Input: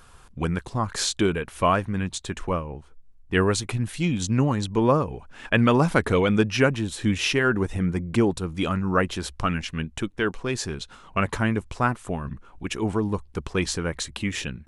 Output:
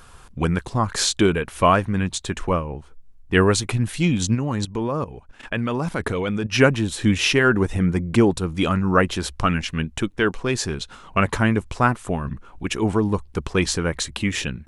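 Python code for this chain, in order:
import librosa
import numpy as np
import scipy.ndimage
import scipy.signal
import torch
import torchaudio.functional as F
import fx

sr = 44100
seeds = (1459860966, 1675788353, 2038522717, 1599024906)

y = fx.level_steps(x, sr, step_db=14, at=(4.34, 6.51), fade=0.02)
y = F.gain(torch.from_numpy(y), 4.5).numpy()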